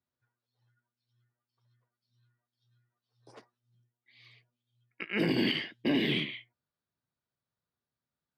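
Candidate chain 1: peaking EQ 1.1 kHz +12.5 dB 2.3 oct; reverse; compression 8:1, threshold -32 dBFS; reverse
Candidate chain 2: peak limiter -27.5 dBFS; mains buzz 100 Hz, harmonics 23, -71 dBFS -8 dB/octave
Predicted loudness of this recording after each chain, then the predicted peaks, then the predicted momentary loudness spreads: -35.5 LUFS, -37.5 LUFS; -21.5 dBFS, -27.5 dBFS; 20 LU, 22 LU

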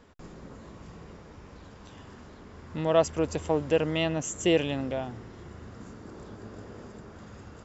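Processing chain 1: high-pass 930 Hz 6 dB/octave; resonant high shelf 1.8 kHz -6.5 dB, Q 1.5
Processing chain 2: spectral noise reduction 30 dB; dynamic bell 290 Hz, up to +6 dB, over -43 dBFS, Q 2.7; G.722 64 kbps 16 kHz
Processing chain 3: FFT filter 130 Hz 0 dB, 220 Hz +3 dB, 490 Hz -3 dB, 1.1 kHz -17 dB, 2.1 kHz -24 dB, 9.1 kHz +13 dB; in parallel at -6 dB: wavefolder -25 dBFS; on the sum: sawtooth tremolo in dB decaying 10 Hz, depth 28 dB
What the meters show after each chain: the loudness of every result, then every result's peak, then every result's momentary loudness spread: -34.0 LUFS, -26.0 LUFS, -36.5 LUFS; -14.0 dBFS, -8.5 dBFS, -18.0 dBFS; 23 LU, 9 LU, 21 LU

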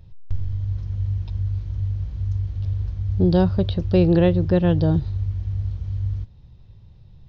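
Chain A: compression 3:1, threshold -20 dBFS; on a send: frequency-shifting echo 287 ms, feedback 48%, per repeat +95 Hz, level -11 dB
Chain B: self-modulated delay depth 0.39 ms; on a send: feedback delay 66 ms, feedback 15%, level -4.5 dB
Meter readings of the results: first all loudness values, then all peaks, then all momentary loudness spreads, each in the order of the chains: -25.5 LUFS, -22.5 LUFS; -10.5 dBFS, -4.5 dBFS; 11 LU, 14 LU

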